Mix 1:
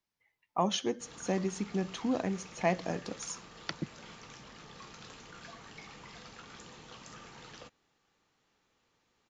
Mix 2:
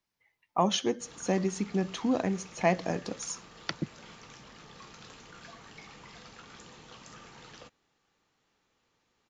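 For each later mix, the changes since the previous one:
speech +3.5 dB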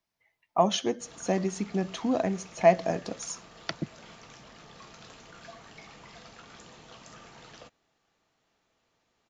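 master: add parametric band 660 Hz +9 dB 0.21 octaves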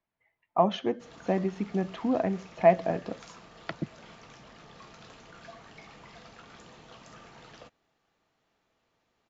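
speech: add low-pass filter 2,700 Hz 12 dB per octave
master: add low-pass filter 4,000 Hz 6 dB per octave

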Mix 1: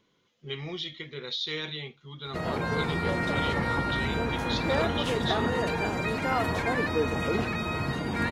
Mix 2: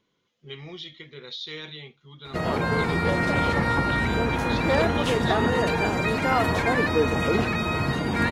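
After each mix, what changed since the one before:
speech −3.5 dB
background +5.0 dB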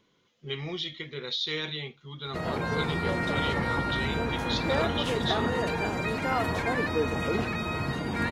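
speech +5.0 dB
background −5.5 dB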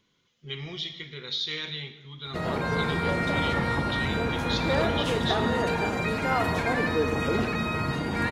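speech: add parametric band 520 Hz −7.5 dB 2.9 octaves
reverb: on, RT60 1.2 s

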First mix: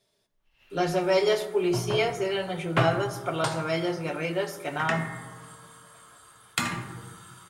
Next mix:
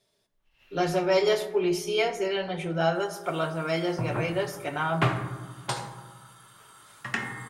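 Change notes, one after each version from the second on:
second sound: entry +2.25 s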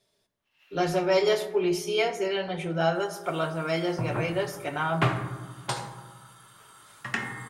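first sound: add high-pass filter 780 Hz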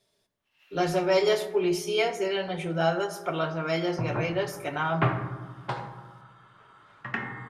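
second sound: add low-pass filter 2,200 Hz 12 dB per octave

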